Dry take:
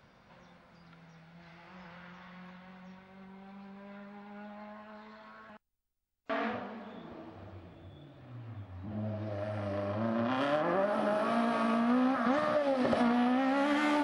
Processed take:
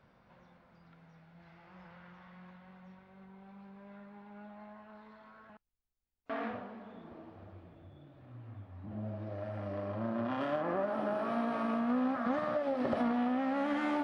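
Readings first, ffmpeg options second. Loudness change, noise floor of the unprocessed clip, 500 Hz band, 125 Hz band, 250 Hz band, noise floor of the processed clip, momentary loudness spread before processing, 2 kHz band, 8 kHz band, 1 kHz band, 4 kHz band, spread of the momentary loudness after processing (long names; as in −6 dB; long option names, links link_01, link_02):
−3.5 dB, −63 dBFS, −3.5 dB, −3.0 dB, −3.0 dB, −67 dBFS, 22 LU, −5.5 dB, can't be measured, −4.0 dB, −9.0 dB, 21 LU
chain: -af "highshelf=frequency=3000:gain=-10.5,volume=-3dB"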